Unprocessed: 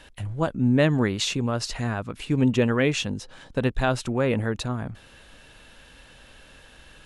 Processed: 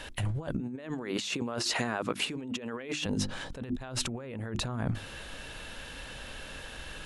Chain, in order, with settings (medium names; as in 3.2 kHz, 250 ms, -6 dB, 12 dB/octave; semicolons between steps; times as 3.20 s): 0.60–3.06 s: high-pass 250 Hz 12 dB/octave; hum notches 50/100/150/200/250/300/350 Hz; compressor with a negative ratio -35 dBFS, ratio -1